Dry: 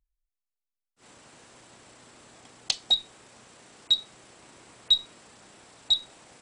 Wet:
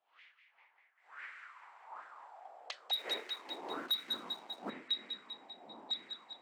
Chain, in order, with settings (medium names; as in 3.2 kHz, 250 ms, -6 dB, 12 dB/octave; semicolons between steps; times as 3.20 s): wind noise 300 Hz -34 dBFS; auto-wah 680–2100 Hz, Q 4.4, up, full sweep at -24 dBFS; on a send: feedback echo behind a high-pass 197 ms, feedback 61%, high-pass 1.7 kHz, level -7.5 dB; 2.93–4.70 s: on the sum: waveshaping leveller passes 2; high-pass sweep 3.1 kHz -> 230 Hz, 0.24–4.08 s; trim +1 dB